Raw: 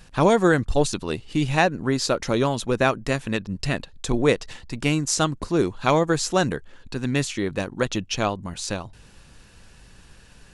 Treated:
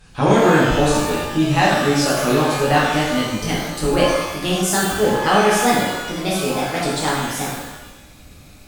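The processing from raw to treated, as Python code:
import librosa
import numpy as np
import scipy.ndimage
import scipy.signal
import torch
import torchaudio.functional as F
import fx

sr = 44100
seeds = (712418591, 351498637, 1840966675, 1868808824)

y = fx.speed_glide(x, sr, from_pct=96, to_pct=147)
y = fx.rev_shimmer(y, sr, seeds[0], rt60_s=1.0, semitones=12, shimmer_db=-8, drr_db=-7.0)
y = F.gain(torch.from_numpy(y), -3.5).numpy()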